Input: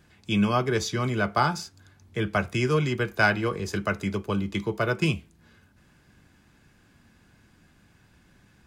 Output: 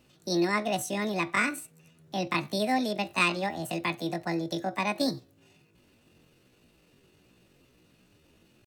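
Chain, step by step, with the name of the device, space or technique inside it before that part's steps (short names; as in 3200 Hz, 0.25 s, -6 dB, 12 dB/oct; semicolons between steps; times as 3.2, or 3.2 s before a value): chipmunk voice (pitch shift +9 st); gain -3.5 dB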